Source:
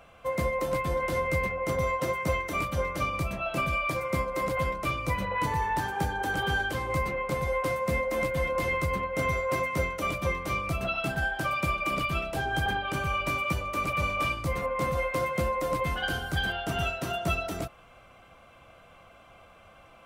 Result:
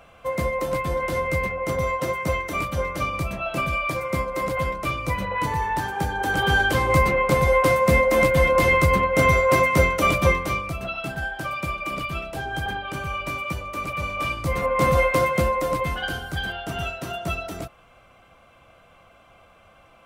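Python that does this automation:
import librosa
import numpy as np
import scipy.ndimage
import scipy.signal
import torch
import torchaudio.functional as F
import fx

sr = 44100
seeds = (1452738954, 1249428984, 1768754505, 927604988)

y = fx.gain(x, sr, db=fx.line((6.04, 3.5), (6.76, 10.5), (10.29, 10.5), (10.73, 0.0), (14.09, 0.0), (14.94, 10.5), (16.27, 0.5)))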